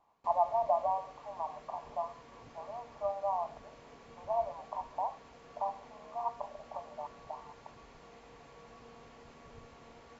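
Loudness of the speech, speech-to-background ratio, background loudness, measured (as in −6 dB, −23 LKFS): −37.0 LKFS, 18.0 dB, −55.0 LKFS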